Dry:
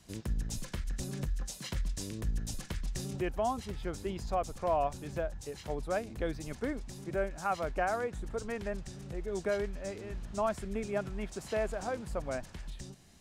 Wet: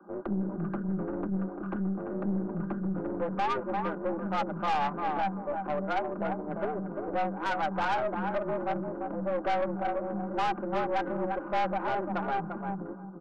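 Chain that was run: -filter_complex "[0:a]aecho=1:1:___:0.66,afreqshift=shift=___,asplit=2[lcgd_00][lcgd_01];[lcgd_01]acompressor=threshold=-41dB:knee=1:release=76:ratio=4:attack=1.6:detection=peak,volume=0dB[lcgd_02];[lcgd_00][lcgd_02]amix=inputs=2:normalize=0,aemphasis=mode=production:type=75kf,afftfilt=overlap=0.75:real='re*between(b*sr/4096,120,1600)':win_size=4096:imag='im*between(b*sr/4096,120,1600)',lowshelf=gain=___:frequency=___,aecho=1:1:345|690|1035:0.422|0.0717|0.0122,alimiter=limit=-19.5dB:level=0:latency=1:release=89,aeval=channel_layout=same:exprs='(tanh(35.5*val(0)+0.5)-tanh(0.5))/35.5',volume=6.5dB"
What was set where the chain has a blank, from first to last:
4.7, 150, -7, 470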